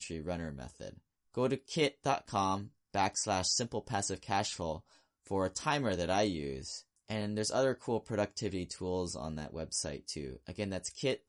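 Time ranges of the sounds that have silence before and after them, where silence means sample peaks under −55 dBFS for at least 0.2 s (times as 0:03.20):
0:01.34–0:02.69
0:02.94–0:04.97
0:05.26–0:06.82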